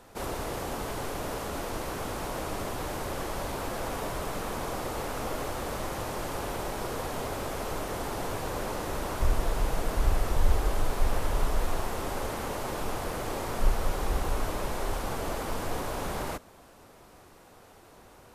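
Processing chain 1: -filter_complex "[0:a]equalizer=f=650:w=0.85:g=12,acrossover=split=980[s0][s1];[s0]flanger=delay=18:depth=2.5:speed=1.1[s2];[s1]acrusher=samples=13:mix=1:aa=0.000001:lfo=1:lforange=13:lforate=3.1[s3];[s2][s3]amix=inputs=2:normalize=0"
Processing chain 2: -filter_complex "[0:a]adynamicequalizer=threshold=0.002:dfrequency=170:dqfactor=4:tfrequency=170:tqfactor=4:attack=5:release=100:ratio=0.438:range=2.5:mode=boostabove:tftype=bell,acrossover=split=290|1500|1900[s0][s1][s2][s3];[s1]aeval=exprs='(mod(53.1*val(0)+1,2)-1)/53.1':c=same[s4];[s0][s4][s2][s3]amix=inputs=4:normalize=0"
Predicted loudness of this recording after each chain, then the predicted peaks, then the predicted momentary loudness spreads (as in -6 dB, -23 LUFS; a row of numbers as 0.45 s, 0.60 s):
-29.5 LUFS, -34.0 LUFS; -12.5 dBFS, -11.0 dBFS; 2 LU, 5 LU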